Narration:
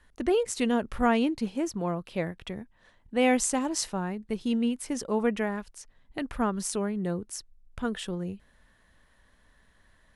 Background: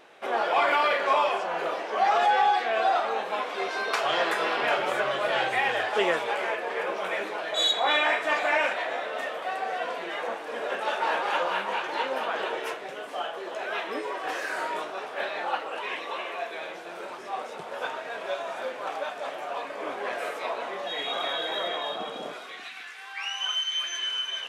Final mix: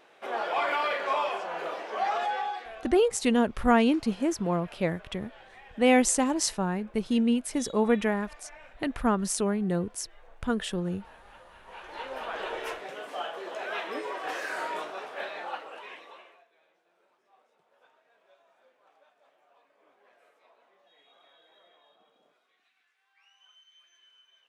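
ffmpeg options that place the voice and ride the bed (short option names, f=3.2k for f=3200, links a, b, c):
-filter_complex "[0:a]adelay=2650,volume=2.5dB[a];[1:a]volume=19dB,afade=t=out:st=1.99:d=0.91:silence=0.0841395,afade=t=in:st=11.59:d=1.1:silence=0.0630957,afade=t=out:st=14.8:d=1.64:silence=0.0354813[b];[a][b]amix=inputs=2:normalize=0"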